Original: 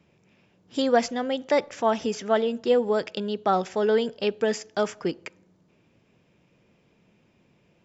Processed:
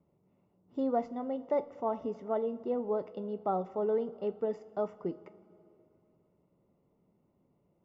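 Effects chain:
Savitzky-Golay smoothing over 65 samples
coupled-rooms reverb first 0.24 s, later 3.1 s, from −18 dB, DRR 10.5 dB
level −8.5 dB

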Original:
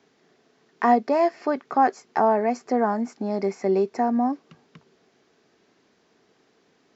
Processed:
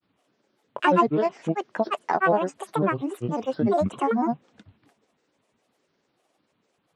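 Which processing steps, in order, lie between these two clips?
noise gate −59 dBFS, range −7 dB
granular cloud 100 ms, spray 100 ms, pitch spread up and down by 12 semitones

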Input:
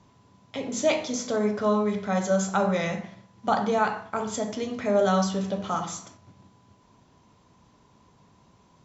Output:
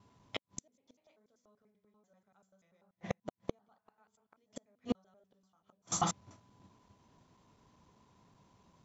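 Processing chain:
slices reordered back to front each 97 ms, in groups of 3
gate with flip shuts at −22 dBFS, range −39 dB
expander for the loud parts 1.5 to 1, over −55 dBFS
level +4.5 dB

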